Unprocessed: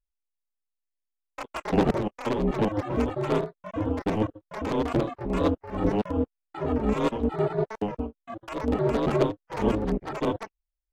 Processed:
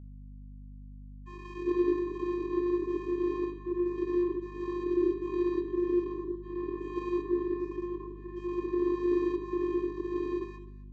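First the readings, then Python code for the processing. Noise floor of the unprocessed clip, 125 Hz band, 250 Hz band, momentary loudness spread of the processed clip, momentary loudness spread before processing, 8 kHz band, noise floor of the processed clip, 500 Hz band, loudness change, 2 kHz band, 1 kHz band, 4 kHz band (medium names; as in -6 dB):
-84 dBFS, -15.0 dB, -3.0 dB, 19 LU, 11 LU, no reading, -46 dBFS, -3.5 dB, -4.0 dB, -10.0 dB, -10.5 dB, under -10 dB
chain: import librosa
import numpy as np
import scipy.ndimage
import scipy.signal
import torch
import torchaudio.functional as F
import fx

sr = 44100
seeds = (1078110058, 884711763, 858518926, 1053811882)

p1 = fx.spec_dilate(x, sr, span_ms=240)
p2 = p1 + 0.92 * np.pad(p1, (int(3.2 * sr / 1000.0), 0))[:len(p1)]
p3 = fx.tube_stage(p2, sr, drive_db=14.0, bias=0.75)
p4 = fx.vocoder(p3, sr, bands=16, carrier='square', carrier_hz=353.0)
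p5 = fx.add_hum(p4, sr, base_hz=50, snr_db=17)
p6 = p5 + fx.echo_feedback(p5, sr, ms=256, feedback_pct=15, wet_db=-20.0, dry=0)
p7 = fx.rev_gated(p6, sr, seeds[0], gate_ms=100, shape='rising', drr_db=10.0)
y = p7 * librosa.db_to_amplitude(-5.5)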